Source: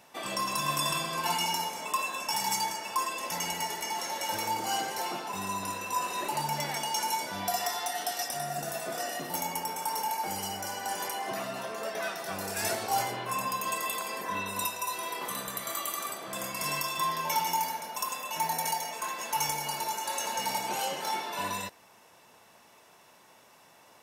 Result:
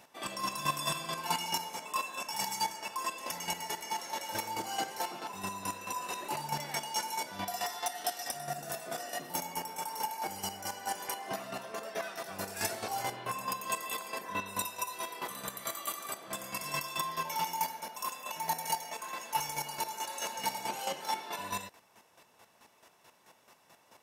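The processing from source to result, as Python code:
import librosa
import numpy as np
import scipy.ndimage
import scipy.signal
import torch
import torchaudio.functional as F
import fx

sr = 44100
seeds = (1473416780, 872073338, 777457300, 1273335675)

y = fx.chopper(x, sr, hz=4.6, depth_pct=60, duty_pct=25)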